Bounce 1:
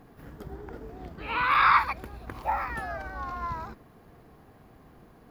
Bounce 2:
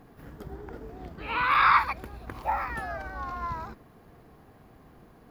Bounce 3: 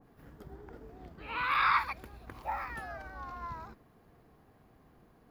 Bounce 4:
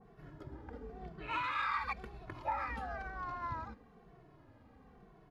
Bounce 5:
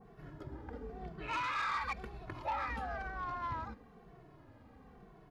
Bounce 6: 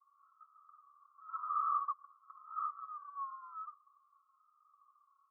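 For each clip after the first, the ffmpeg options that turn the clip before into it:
-af anull
-af "adynamicequalizer=threshold=0.0282:dfrequency=1700:dqfactor=0.7:tfrequency=1700:tqfactor=0.7:attack=5:release=100:ratio=0.375:range=2:mode=boostabove:tftype=highshelf,volume=0.398"
-filter_complex "[0:a]alimiter=level_in=1.58:limit=0.0631:level=0:latency=1:release=148,volume=0.631,adynamicsmooth=sensitivity=6.5:basefreq=5700,asplit=2[s0][s1];[s1]adelay=2.2,afreqshift=-1[s2];[s0][s2]amix=inputs=2:normalize=1,volume=1.68"
-af "asoftclip=type=tanh:threshold=0.0237,volume=1.33"
-af "asuperpass=centerf=1200:order=8:qfactor=5.6,volume=1.68"

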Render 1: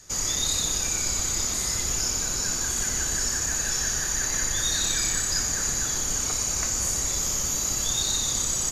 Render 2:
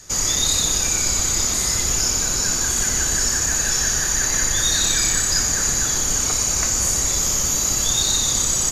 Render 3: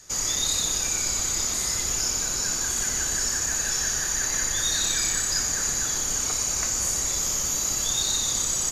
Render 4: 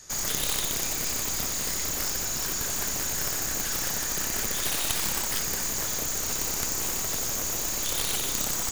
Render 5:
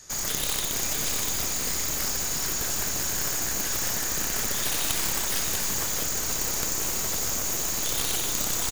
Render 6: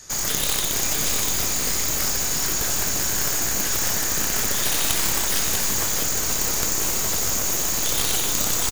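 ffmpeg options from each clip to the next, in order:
-af "acontrast=65"
-af "lowshelf=f=280:g=-4.5,volume=0.531"
-af "aeval=exprs='0.237*(cos(1*acos(clip(val(0)/0.237,-1,1)))-cos(1*PI/2))+0.106*(cos(3*acos(clip(val(0)/0.237,-1,1)))-cos(3*PI/2))+0.0266*(cos(4*acos(clip(val(0)/0.237,-1,1)))-cos(4*PI/2))+0.0119*(cos(7*acos(clip(val(0)/0.237,-1,1)))-cos(7*PI/2))':c=same,volume=1.58"
-af "aecho=1:1:644:0.562"
-filter_complex "[0:a]asplit=2[s0][s1];[s1]adelay=20,volume=0.251[s2];[s0][s2]amix=inputs=2:normalize=0,volume=1.68"

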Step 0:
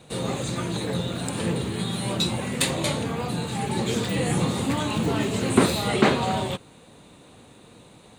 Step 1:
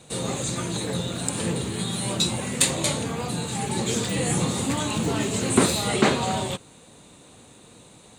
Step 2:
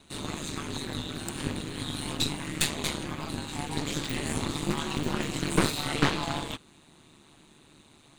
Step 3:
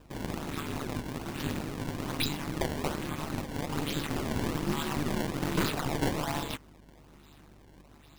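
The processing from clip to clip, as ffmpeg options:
-af "equalizer=f=7400:t=o:w=1.1:g=9,volume=0.891"
-af "equalizer=f=125:t=o:w=1:g=-9,equalizer=f=250:t=o:w=1:g=4,equalizer=f=500:t=o:w=1:g=-12,equalizer=f=8000:t=o:w=1:g=-9,aeval=exprs='val(0)*sin(2*PI*74*n/s)':c=same,aeval=exprs='0.422*(cos(1*acos(clip(val(0)/0.422,-1,1)))-cos(1*PI/2))+0.0531*(cos(8*acos(clip(val(0)/0.422,-1,1)))-cos(8*PI/2))':c=same"
-af "aresample=11025,asoftclip=type=hard:threshold=0.0944,aresample=44100,acrusher=samples=20:mix=1:aa=0.000001:lfo=1:lforange=32:lforate=1.2,aeval=exprs='val(0)+0.00141*(sin(2*PI*50*n/s)+sin(2*PI*2*50*n/s)/2+sin(2*PI*3*50*n/s)/3+sin(2*PI*4*50*n/s)/4+sin(2*PI*5*50*n/s)/5)':c=same"

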